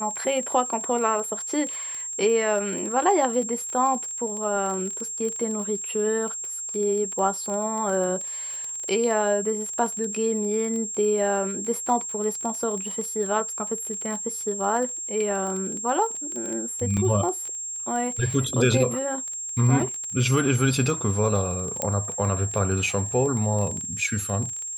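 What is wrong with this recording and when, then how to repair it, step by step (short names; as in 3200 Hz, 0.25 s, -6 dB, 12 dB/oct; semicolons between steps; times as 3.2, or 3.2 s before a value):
crackle 20/s -29 dBFS
tone 7500 Hz -30 dBFS
16.97 gap 4.9 ms
21.82 pop -9 dBFS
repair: de-click; notch 7500 Hz, Q 30; interpolate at 16.97, 4.9 ms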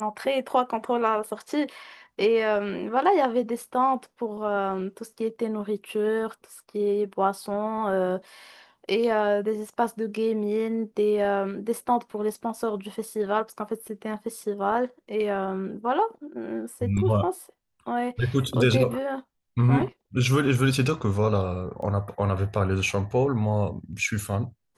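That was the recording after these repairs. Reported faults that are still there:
21.82 pop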